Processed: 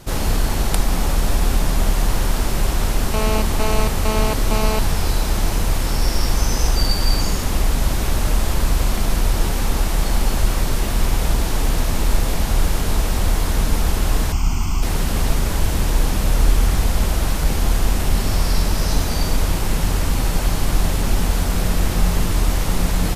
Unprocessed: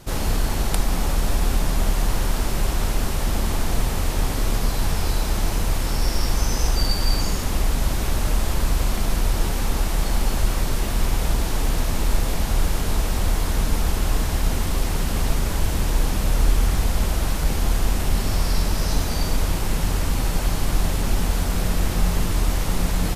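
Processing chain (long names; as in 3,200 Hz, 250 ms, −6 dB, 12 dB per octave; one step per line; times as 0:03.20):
0:03.14–0:04.79: phone interference −26 dBFS
0:14.32–0:14.83: phaser with its sweep stopped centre 2,600 Hz, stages 8
level +3 dB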